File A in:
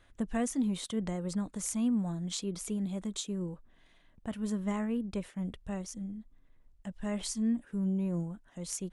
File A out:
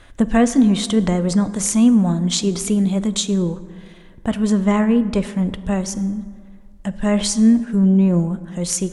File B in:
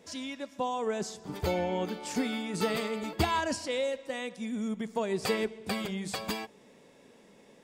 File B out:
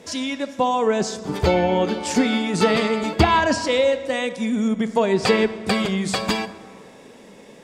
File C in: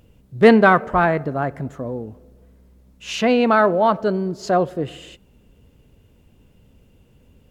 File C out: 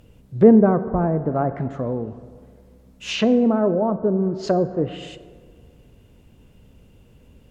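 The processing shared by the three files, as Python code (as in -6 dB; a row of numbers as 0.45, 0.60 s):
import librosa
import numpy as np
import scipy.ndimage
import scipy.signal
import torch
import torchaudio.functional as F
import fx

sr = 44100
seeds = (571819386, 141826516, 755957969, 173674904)

y = fx.env_lowpass_down(x, sr, base_hz=440.0, full_db=-16.0)
y = fx.rev_plate(y, sr, seeds[0], rt60_s=1.9, hf_ratio=0.45, predelay_ms=0, drr_db=12.5)
y = librosa.util.normalize(y) * 10.0 ** (-2 / 20.0)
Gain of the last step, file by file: +16.5, +12.0, +2.0 dB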